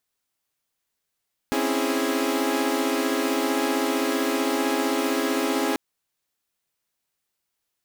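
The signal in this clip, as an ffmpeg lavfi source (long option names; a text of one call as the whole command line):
ffmpeg -f lavfi -i "aevalsrc='0.0562*((2*mod(261.63*t,1)-1)+(2*mod(277.18*t,1)-1)+(2*mod(329.63*t,1)-1)+(2*mod(415.3*t,1)-1))':duration=4.24:sample_rate=44100" out.wav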